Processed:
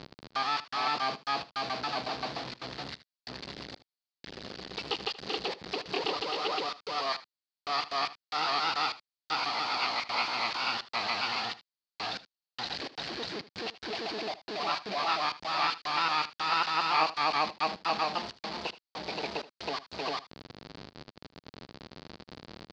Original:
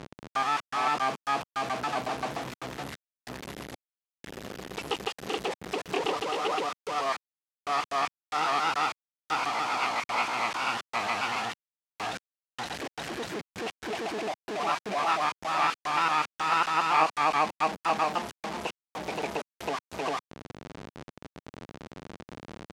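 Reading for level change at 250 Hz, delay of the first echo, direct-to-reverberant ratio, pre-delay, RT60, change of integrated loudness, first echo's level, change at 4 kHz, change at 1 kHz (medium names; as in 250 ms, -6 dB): -4.0 dB, 77 ms, no reverb, no reverb, no reverb, -2.0 dB, -17.0 dB, +4.0 dB, -3.5 dB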